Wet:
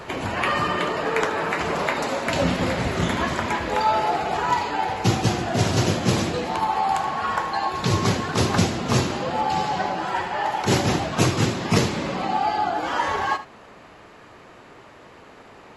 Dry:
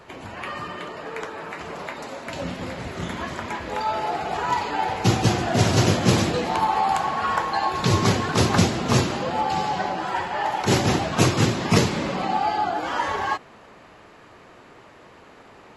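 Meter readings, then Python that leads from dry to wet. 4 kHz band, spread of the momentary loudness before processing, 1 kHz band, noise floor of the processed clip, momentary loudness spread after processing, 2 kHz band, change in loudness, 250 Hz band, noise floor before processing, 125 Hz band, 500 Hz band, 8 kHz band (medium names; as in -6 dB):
0.0 dB, 14 LU, +1.0 dB, -47 dBFS, 4 LU, +2.0 dB, +0.5 dB, -0.5 dB, -49 dBFS, -1.0 dB, +1.0 dB, -1.0 dB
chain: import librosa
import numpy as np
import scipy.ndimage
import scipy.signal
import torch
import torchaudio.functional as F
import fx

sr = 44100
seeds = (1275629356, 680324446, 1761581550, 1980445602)

y = fx.rider(x, sr, range_db=10, speed_s=2.0)
y = y + 10.0 ** (-14.0 / 20.0) * np.pad(y, (int(77 * sr / 1000.0), 0))[:len(y)]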